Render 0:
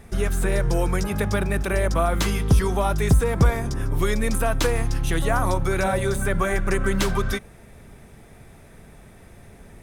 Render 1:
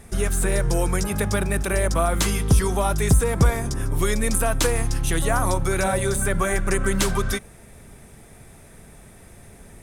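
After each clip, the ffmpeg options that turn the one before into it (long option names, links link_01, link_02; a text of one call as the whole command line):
ffmpeg -i in.wav -af "equalizer=frequency=9200:width_type=o:width=1.2:gain=8.5" out.wav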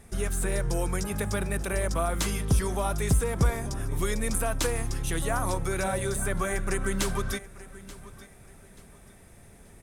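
ffmpeg -i in.wav -af "aecho=1:1:883|1766|2649:0.126|0.0378|0.0113,volume=-6.5dB" out.wav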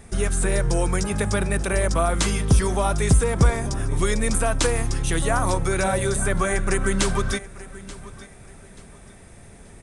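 ffmpeg -i in.wav -af "aresample=22050,aresample=44100,volume=6.5dB" out.wav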